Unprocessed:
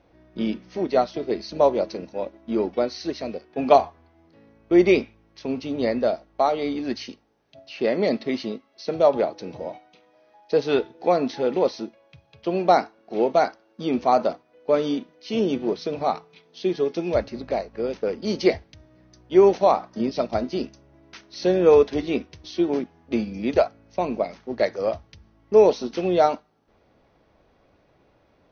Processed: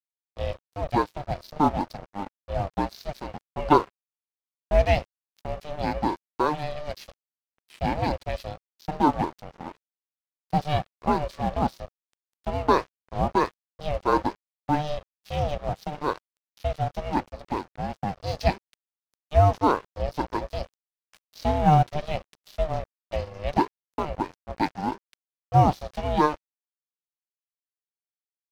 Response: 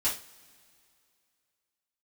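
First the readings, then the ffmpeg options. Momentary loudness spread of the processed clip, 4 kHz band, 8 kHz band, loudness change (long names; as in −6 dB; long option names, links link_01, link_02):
15 LU, −4.0 dB, can't be measured, −4.0 dB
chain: -af "aeval=exprs='val(0)*sin(2*PI*300*n/s)':channel_layout=same,aeval=exprs='sgn(val(0))*max(abs(val(0))-0.01,0)':channel_layout=same"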